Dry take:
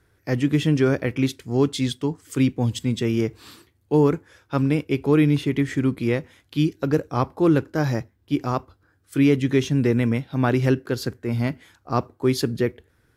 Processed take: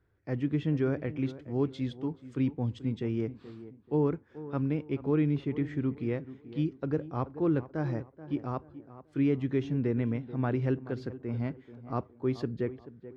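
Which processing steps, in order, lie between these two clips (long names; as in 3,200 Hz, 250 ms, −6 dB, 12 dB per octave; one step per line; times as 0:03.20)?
head-to-tape spacing loss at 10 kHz 29 dB
tape delay 432 ms, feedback 39%, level −13 dB, low-pass 1,300 Hz
level −8.5 dB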